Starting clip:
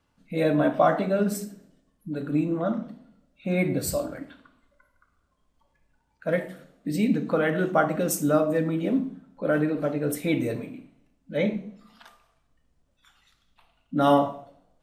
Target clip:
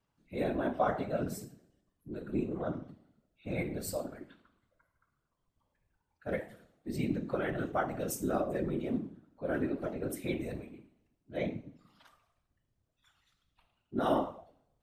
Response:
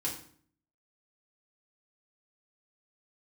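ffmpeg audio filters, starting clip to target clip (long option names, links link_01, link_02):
-filter_complex "[0:a]asplit=2[link_01][link_02];[1:a]atrim=start_sample=2205,atrim=end_sample=3087,lowshelf=frequency=240:gain=4.5[link_03];[link_02][link_03]afir=irnorm=-1:irlink=0,volume=-22dB[link_04];[link_01][link_04]amix=inputs=2:normalize=0,afftfilt=real='hypot(re,im)*cos(2*PI*random(0))':imag='hypot(re,im)*sin(2*PI*random(1))':win_size=512:overlap=0.75,volume=-4.5dB"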